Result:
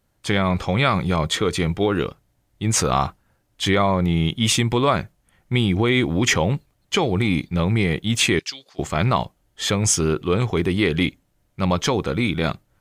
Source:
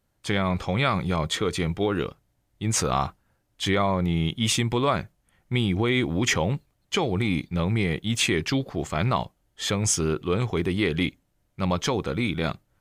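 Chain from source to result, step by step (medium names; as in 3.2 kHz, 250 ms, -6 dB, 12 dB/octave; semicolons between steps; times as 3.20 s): 8.39–8.79 s: band-pass filter 5.7 kHz, Q 1.2; trim +4.5 dB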